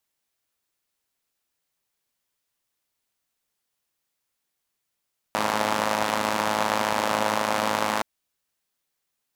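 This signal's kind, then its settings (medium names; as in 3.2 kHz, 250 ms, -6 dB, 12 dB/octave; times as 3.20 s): four-cylinder engine model, steady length 2.67 s, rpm 3200, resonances 260/590/860 Hz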